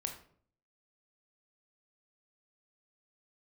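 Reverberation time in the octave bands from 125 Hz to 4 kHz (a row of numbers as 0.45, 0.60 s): 0.75, 0.70, 0.60, 0.50, 0.40, 0.35 s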